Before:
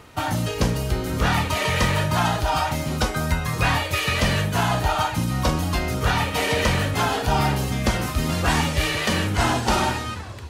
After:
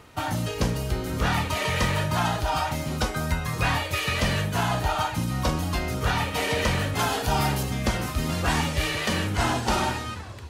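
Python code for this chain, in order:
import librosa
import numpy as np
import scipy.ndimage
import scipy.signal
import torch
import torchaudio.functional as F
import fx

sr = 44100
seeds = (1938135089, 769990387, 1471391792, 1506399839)

y = fx.high_shelf(x, sr, hz=5300.0, db=7.0, at=(6.99, 7.63))
y = F.gain(torch.from_numpy(y), -3.5).numpy()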